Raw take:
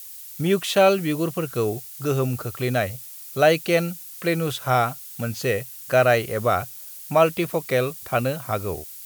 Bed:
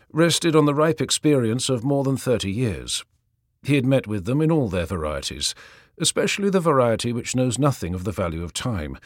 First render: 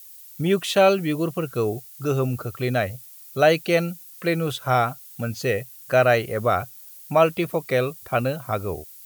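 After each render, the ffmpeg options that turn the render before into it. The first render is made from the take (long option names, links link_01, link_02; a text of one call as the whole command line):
ffmpeg -i in.wav -af "afftdn=noise_reduction=7:noise_floor=-40" out.wav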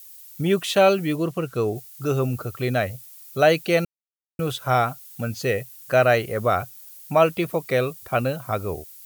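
ffmpeg -i in.wav -filter_complex "[0:a]asettb=1/sr,asplit=3[link_01][link_02][link_03];[link_01]atrim=end=1.164[link_04];[link_02]atrim=start=1.16:end=1.76,asetpts=PTS-STARTPTS,afade=type=in:duration=0.004:curve=qsin,afade=type=out:start_time=0.596:duration=0.004:curve=qsin,highshelf=frequency=11000:gain=-9[link_05];[link_03]atrim=start=1.756[link_06];[link_04][link_05]acrossfade=duration=0.004:curve1=hsin:curve2=qsin[link_07];[link_07][link_06]acrossfade=duration=0.004:curve1=qsin:curve2=hsin,asplit=3[link_08][link_09][link_10];[link_08]atrim=end=3.85,asetpts=PTS-STARTPTS,afade=type=out:start_time=3.846:duration=0.004:curve=hsin[link_11];[link_09]atrim=start=3.85:end=4.39,asetpts=PTS-STARTPTS,volume=0[link_12];[link_10]atrim=start=4.39,asetpts=PTS-STARTPTS,afade=type=in:duration=0.004:curve=hsin[link_13];[link_11][link_12][link_13]concat=n=3:v=0:a=1" out.wav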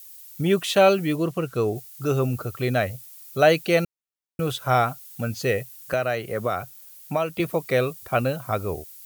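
ffmpeg -i in.wav -filter_complex "[0:a]asettb=1/sr,asplit=3[link_01][link_02][link_03];[link_01]atrim=end=5.934[link_04];[link_02]atrim=start=5.93:end=7.4,asetpts=PTS-STARTPTS,afade=type=in:duration=0.004:curve=qsin,afade=type=out:start_time=1.466:duration=0.004:curve=qsin,acrossover=split=110|3400[link_05][link_06][link_07];[link_05]acompressor=threshold=-47dB:ratio=4[link_08];[link_06]acompressor=threshold=-22dB:ratio=4[link_09];[link_07]acompressor=threshold=-42dB:ratio=4[link_10];[link_08][link_09][link_10]amix=inputs=3:normalize=0[link_11];[link_03]atrim=start=7.396[link_12];[link_04][link_11]acrossfade=duration=0.004:curve1=hsin:curve2=qsin[link_13];[link_13][link_12]acrossfade=duration=0.004:curve1=qsin:curve2=hsin" out.wav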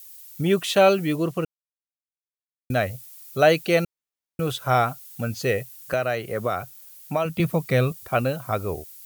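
ffmpeg -i in.wav -filter_complex "[0:a]asettb=1/sr,asplit=3[link_01][link_02][link_03];[link_01]atrim=end=7.254[link_04];[link_02]atrim=start=7.25:end=7.92,asetpts=PTS-STARTPTS,afade=type=in:duration=0.004:curve=qsin,afade=type=out:start_time=0.666:duration=0.004:curve=qsin,lowshelf=frequency=260:width_type=q:width=1.5:gain=6.5[link_05];[link_03]atrim=start=7.916[link_06];[link_04][link_05]acrossfade=duration=0.004:curve1=hsin:curve2=qsin[link_07];[link_07][link_06]acrossfade=duration=0.004:curve1=qsin:curve2=hsin,asplit=3[link_08][link_09][link_10];[link_08]atrim=end=1.45,asetpts=PTS-STARTPTS,afade=type=out:start_time=1.446:duration=0.004:curve=hsin[link_11];[link_09]atrim=start=1.45:end=2.7,asetpts=PTS-STARTPTS,volume=0[link_12];[link_10]atrim=start=2.7,asetpts=PTS-STARTPTS,afade=type=in:duration=0.004:curve=hsin[link_13];[link_11][link_12][link_13]concat=n=3:v=0:a=1" out.wav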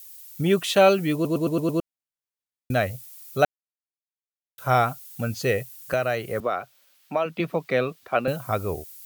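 ffmpeg -i in.wav -filter_complex "[0:a]asettb=1/sr,asplit=3[link_01][link_02][link_03];[link_01]atrim=end=6.404[link_04];[link_02]atrim=start=6.4:end=8.28,asetpts=PTS-STARTPTS,afade=type=in:duration=0.004:curve=qsin,afade=type=out:start_time=1.876:duration=0.004:curve=qsin,acrossover=split=210 4500:gain=0.112 1 0.158[link_05][link_06][link_07];[link_05][link_06][link_07]amix=inputs=3:normalize=0[link_08];[link_03]atrim=start=8.276[link_09];[link_04][link_08]acrossfade=duration=0.004:curve1=hsin:curve2=qsin[link_10];[link_10][link_09]acrossfade=duration=0.004:curve1=qsin:curve2=hsin,asplit=9[link_11][link_12][link_13][link_14][link_15][link_16][link_17][link_18][link_19];[link_11]atrim=end=1.252[link_20];[link_12]atrim=start=1.138:end=1.252[link_21];[link_13]atrim=start=1.138:end=1.252[link_22];[link_14]atrim=start=1.138:end=1.252[link_23];[link_15]atrim=start=1.138:end=1.252[link_24];[link_16]atrim=start=1.138:end=1.252[link_25];[link_17]atrim=start=1.798:end=3.45,asetpts=PTS-STARTPTS,afade=type=out:start_time=1.648:duration=0.004:curve=hsin[link_26];[link_18]atrim=start=3.45:end=4.58,asetpts=PTS-STARTPTS,volume=0[link_27];[link_19]atrim=start=4.58,asetpts=PTS-STARTPTS,afade=type=in:duration=0.004:curve=hsin[link_28];[link_20][link_21]acrossfade=duration=0.004:curve1=hsin:curve2=hsin[link_29];[link_29][link_22]acrossfade=duration=0.004:curve1=hsin:curve2=hsin[link_30];[link_30][link_23]acrossfade=duration=0.004:curve1=hsin:curve2=hsin[link_31];[link_31][link_24]acrossfade=duration=0.004:curve1=hsin:curve2=hsin[link_32];[link_32][link_25]acrossfade=duration=0.004:curve1=hsin:curve2=hsin[link_33];[link_26][link_27][link_28]concat=n=3:v=0:a=1[link_34];[link_33][link_34]acrossfade=duration=0.004:curve1=hsin:curve2=hsin" out.wav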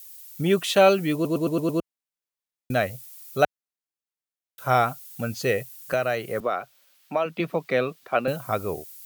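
ffmpeg -i in.wav -af "equalizer=frequency=71:width=1.5:gain=-11" out.wav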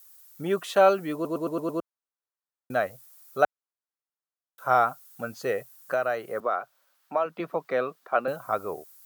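ffmpeg -i in.wav -af "highpass=frequency=560:poles=1,highshelf=frequency=1800:width_type=q:width=1.5:gain=-8.5" out.wav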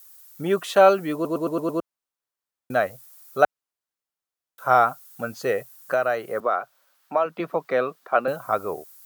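ffmpeg -i in.wav -af "volume=4dB" out.wav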